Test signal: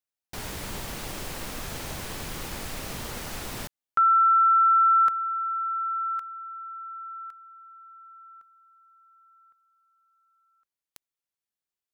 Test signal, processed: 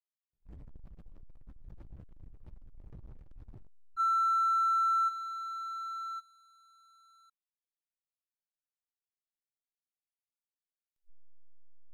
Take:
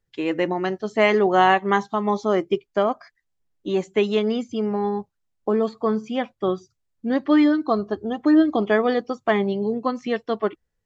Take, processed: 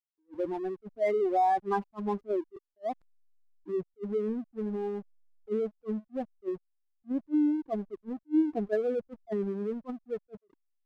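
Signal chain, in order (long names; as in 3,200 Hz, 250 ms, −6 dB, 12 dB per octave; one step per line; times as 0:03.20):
expanding power law on the bin magnitudes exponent 3.3
slack as between gear wheels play −31.5 dBFS
level that may rise only so fast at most 500 dB per second
level −8 dB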